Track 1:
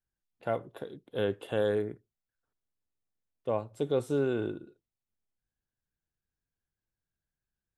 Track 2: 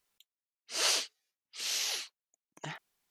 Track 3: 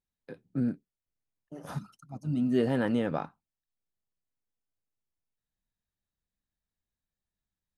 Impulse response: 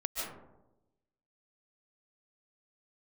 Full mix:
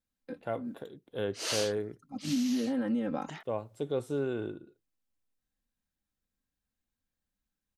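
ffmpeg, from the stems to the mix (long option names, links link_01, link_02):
-filter_complex "[0:a]volume=-3.5dB,asplit=2[link_01][link_02];[1:a]adelay=650,volume=-4dB[link_03];[2:a]aecho=1:1:3.8:0.95,alimiter=limit=-19.5dB:level=0:latency=1:release=240,volume=-3dB[link_04];[link_02]apad=whole_len=342905[link_05];[link_04][link_05]sidechaincompress=threshold=-50dB:ratio=8:attack=7:release=245[link_06];[link_03][link_06]amix=inputs=2:normalize=0,equalizer=frequency=240:width_type=o:width=1.2:gain=5,acompressor=threshold=-27dB:ratio=6,volume=0dB[link_07];[link_01][link_07]amix=inputs=2:normalize=0"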